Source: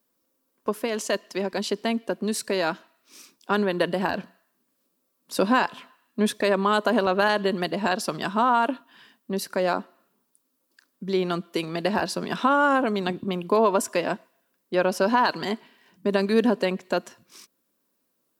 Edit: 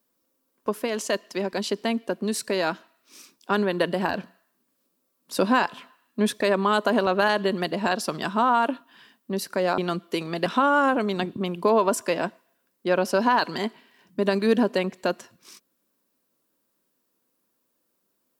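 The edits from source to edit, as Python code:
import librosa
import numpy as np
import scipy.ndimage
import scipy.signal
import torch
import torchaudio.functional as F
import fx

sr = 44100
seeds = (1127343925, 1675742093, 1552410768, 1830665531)

y = fx.edit(x, sr, fx.cut(start_s=9.78, length_s=1.42),
    fx.cut(start_s=11.88, length_s=0.45), tone=tone)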